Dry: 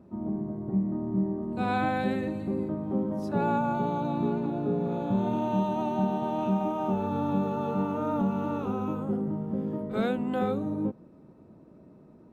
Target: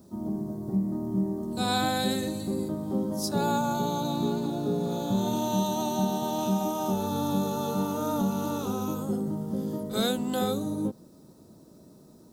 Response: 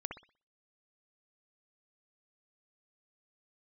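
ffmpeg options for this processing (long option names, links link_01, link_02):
-af "aexciter=amount=10.8:drive=6.4:freq=3700"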